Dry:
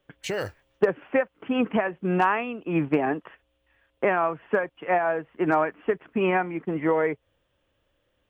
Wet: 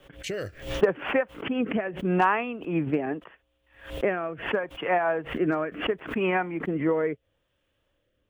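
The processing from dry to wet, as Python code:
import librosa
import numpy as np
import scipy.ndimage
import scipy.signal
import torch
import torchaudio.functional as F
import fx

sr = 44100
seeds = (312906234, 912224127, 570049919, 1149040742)

y = fx.rotary(x, sr, hz=0.75)
y = fx.pre_swell(y, sr, db_per_s=120.0)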